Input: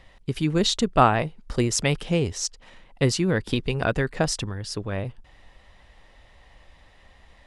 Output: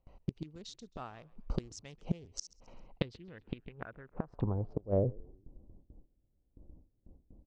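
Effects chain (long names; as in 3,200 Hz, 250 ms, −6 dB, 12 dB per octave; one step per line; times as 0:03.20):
adaptive Wiener filter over 25 samples
noise gate with hold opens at −43 dBFS
low-pass filter sweep 6,100 Hz → 310 Hz, 0:02.61–0:05.48
gate with flip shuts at −18 dBFS, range −27 dB
on a send: echo with shifted repeats 133 ms, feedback 41%, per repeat −68 Hz, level −23.5 dB
on the sum: level −1.5 dB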